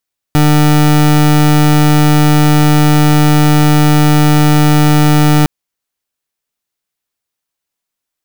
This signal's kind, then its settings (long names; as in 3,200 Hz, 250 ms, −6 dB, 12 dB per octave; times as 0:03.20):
pulse wave 150 Hz, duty 28% −7.5 dBFS 5.11 s